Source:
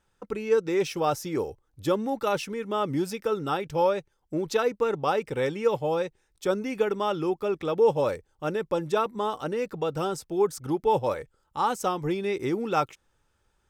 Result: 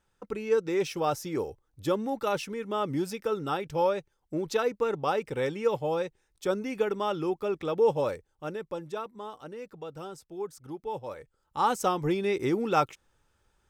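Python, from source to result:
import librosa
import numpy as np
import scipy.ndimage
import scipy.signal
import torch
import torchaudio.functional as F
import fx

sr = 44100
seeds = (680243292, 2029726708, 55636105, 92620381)

y = fx.gain(x, sr, db=fx.line((7.96, -2.5), (9.16, -12.0), (11.07, -12.0), (11.66, 0.5)))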